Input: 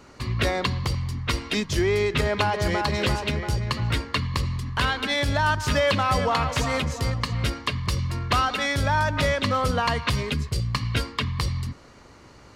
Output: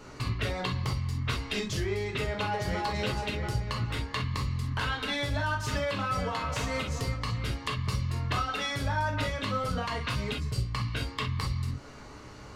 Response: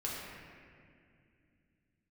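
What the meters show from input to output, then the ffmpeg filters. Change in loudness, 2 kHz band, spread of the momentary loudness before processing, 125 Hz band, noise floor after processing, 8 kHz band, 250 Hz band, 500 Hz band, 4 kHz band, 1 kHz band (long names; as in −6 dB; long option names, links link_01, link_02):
−7.0 dB, −7.0 dB, 6 LU, −5.0 dB, −46 dBFS, −7.0 dB, −6.5 dB, −8.5 dB, −7.0 dB, −7.5 dB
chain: -filter_complex "[0:a]acompressor=threshold=-32dB:ratio=4[link_01];[1:a]atrim=start_sample=2205,atrim=end_sample=3087[link_02];[link_01][link_02]afir=irnorm=-1:irlink=0,volume=2.5dB"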